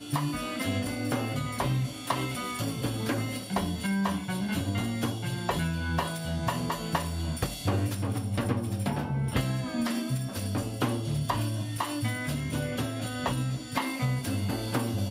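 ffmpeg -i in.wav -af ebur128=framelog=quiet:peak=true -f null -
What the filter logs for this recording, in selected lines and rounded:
Integrated loudness:
  I:         -30.7 LUFS
  Threshold: -40.7 LUFS
Loudness range:
  LRA:         0.7 LU
  Threshold: -50.7 LUFS
  LRA low:   -31.0 LUFS
  LRA high:  -30.3 LUFS
True peak:
  Peak:      -13.2 dBFS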